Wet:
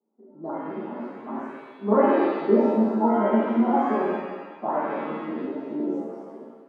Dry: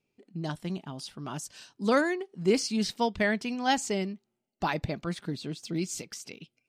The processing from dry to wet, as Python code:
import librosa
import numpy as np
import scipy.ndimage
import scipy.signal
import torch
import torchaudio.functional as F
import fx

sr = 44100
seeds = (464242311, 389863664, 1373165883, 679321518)

y = fx.pitch_trill(x, sr, semitones=-1.5, every_ms=69)
y = scipy.signal.sosfilt(scipy.signal.ellip(3, 1.0, 40, [230.0, 1100.0], 'bandpass', fs=sr, output='sos'), y)
y = fx.rev_shimmer(y, sr, seeds[0], rt60_s=1.3, semitones=7, shimmer_db=-8, drr_db=-7.5)